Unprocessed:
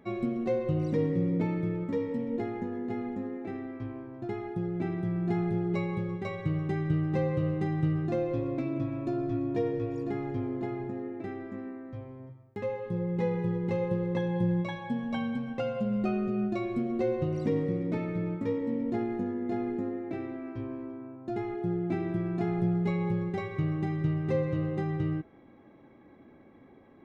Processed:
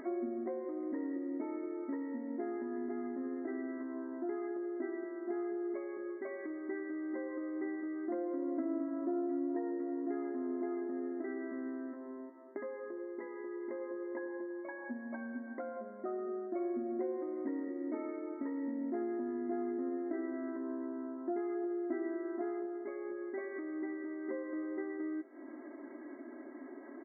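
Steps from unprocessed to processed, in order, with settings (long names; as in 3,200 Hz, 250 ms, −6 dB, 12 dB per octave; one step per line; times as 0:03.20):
downward compressor 2 to 1, threshold −45 dBFS, peak gain reduction 12 dB
comb filter 3.1 ms, depth 88%
upward compression, threshold −42 dBFS
linear-phase brick-wall band-pass 230–2,200 Hz
repeating echo 414 ms, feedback 55%, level −24 dB
level +1 dB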